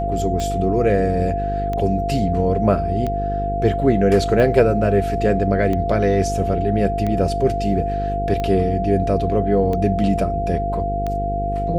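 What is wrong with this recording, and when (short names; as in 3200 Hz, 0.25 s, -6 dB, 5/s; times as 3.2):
buzz 50 Hz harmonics 10 -25 dBFS
tick 45 rpm -13 dBFS
tone 690 Hz -22 dBFS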